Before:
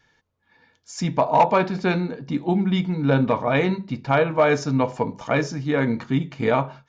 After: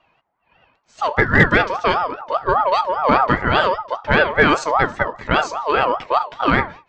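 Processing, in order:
low-pass that shuts in the quiet parts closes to 1,900 Hz, open at −14 dBFS
ring modulator whose carrier an LFO sweeps 900 Hz, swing 20%, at 5 Hz
level +6.5 dB

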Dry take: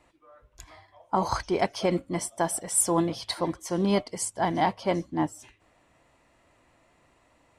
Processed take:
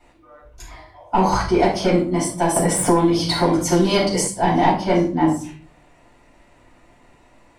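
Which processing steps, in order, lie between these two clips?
soft clipping −17 dBFS, distortion −18 dB
rectangular room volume 330 cubic metres, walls furnished, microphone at 7.3 metres
0:02.56–0:04.28: multiband upward and downward compressor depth 100%
level −2 dB

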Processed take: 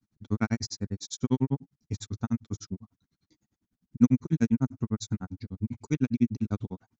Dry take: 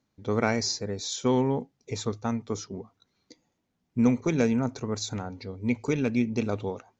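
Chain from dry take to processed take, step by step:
drawn EQ curve 180 Hz 0 dB, 310 Hz −4 dB, 480 Hz −18 dB, 1,600 Hz −8 dB, 2,400 Hz −13 dB, 4,400 Hz −9 dB, 9,400 Hz −5 dB
granular cloud 73 ms, grains 10 per second, spray 21 ms, pitch spread up and down by 0 semitones
level +7.5 dB

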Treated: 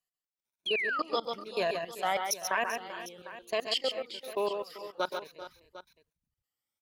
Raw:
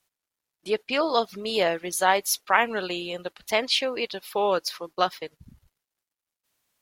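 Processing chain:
rippled gain that drifts along the octave scale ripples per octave 1.5, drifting +1.1 Hz, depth 14 dB
output level in coarse steps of 21 dB
on a send: multi-tap delay 125/138/389/420/752 ms −13/−6/−15.5/−15/−16 dB
on the sum: sound drawn into the spectrogram fall, 0:00.66–0:01.02, 1,100–3,400 Hz −24 dBFS
level −7.5 dB

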